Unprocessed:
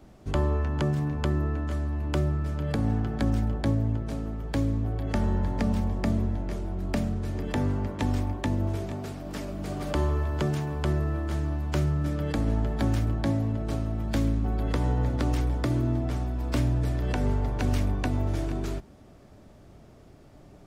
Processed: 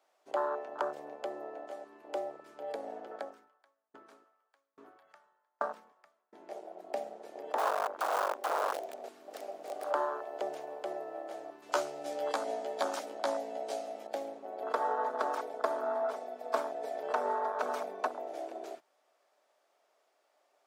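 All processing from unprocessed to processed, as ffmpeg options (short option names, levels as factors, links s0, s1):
-filter_complex "[0:a]asettb=1/sr,asplit=3[s0][s1][s2];[s0]atrim=end=3.114[s3];[s1]atrim=start=3.11:end=6.33,asetpts=PTS-STARTPTS,afade=t=in:d=0.004:c=qsin,afade=t=out:st=3.216:d=0.004:c=qsin,equalizer=f=1300:t=o:w=0.8:g=10.5,aeval=exprs='val(0)*pow(10,-37*if(lt(mod(1.2*n/s,1),2*abs(1.2)/1000),1-mod(1.2*n/s,1)/(2*abs(1.2)/1000),(mod(1.2*n/s,1)-2*abs(1.2)/1000)/(1-2*abs(1.2)/1000))/20)':c=same[s4];[s2]atrim=start=6.326[s5];[s3][s4]acrossfade=d=0.004:c1=hsin:c2=qsin[s6];[s6][s5]acrossfade=d=0.004:c1=qsin:c2=hsin,asettb=1/sr,asplit=3[s7][s8][s9];[s7]atrim=end=7.584[s10];[s8]atrim=start=7.58:end=9.86,asetpts=PTS-STARTPTS,afade=t=in:d=0.004:c=qsin,afade=t=out:st=2.276:d=0.004:c=qsin,aecho=1:1:90|180|270|360|450|540:0.266|0.149|0.0834|0.0467|0.0262|0.0147,atrim=end_sample=100548,aeval=exprs='(mod(16.8*val(0)+1,2)-1)/16.8':c=same[s11];[s9]atrim=start=9.856[s12];[s10][s11]acrossfade=d=0.004:c1=hsin:c2=qsin[s13];[s13][s12]acrossfade=d=0.004:c1=qsin:c2=hsin,asettb=1/sr,asplit=3[s14][s15][s16];[s14]atrim=end=11.624[s17];[s15]atrim=start=11.62:end=14.07,asetpts=PTS-STARTPTS,afade=t=in:d=0.004:c=qsin,afade=t=out:st=2.446:d=0.004:c=qsin,highpass=42,equalizer=f=6500:w=0.37:g=12,asplit=2[s18][s19];[s19]adelay=14,volume=0.708[s20];[s18][s20]amix=inputs=2:normalize=0,atrim=end_sample=108045[s21];[s16]atrim=start=14.066[s22];[s17][s21]acrossfade=d=0.004:c1=hsin:c2=qsin[s23];[s23][s22]acrossfade=d=0.004:c1=qsin:c2=hsin,asettb=1/sr,asplit=3[s24][s25][s26];[s24]atrim=end=14.624[s27];[s25]atrim=start=14.62:end=18.07,asetpts=PTS-STARTPTS,afade=t=in:d=0.004:c=qsin,afade=t=out:st=3.446:d=0.004:c=qsin,bandreject=f=2800:w=25,aecho=1:1:4.6:0.98,atrim=end_sample=152145[s28];[s26]atrim=start=18.066[s29];[s27][s28]acrossfade=d=0.004:c1=hsin:c2=qsin[s30];[s30][s29]acrossfade=d=0.004:c1=qsin:c2=hsin,afwtdn=0.0316,highpass=f=580:w=0.5412,highpass=f=580:w=1.3066,volume=1.68"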